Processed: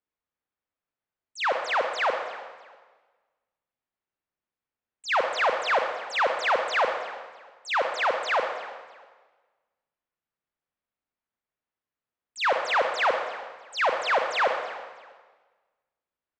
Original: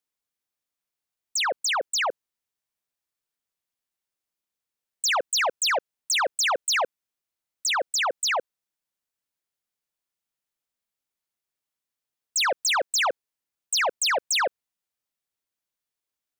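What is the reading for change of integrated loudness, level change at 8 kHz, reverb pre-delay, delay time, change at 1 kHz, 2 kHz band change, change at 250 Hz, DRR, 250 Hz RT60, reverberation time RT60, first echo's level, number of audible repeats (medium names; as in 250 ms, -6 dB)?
-1.5 dB, -19.5 dB, 29 ms, 323 ms, +2.5 dB, +0.5 dB, +3.0 dB, 4.0 dB, 1.5 s, 1.5 s, -18.5 dB, 2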